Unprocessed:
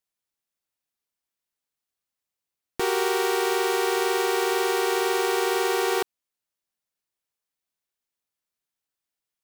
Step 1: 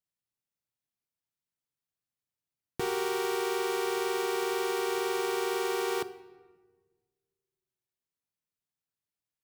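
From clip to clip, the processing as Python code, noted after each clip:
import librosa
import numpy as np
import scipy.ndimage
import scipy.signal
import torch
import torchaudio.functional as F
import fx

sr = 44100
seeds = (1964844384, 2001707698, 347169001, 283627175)

y = fx.peak_eq(x, sr, hz=120.0, db=11.0, octaves=1.9)
y = fx.room_shoebox(y, sr, seeds[0], volume_m3=1300.0, walls='mixed', distance_m=0.38)
y = y * 10.0 ** (-8.0 / 20.0)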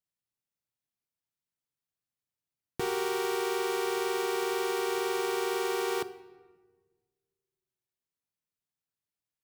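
y = x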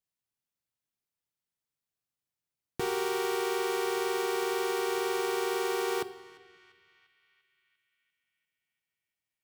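y = fx.echo_banded(x, sr, ms=346, feedback_pct=64, hz=2400.0, wet_db=-18)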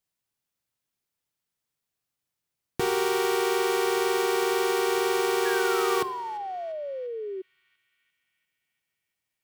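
y = fx.spec_paint(x, sr, seeds[1], shape='fall', start_s=5.45, length_s=1.97, low_hz=370.0, high_hz=1700.0, level_db=-39.0)
y = y * 10.0 ** (5.5 / 20.0)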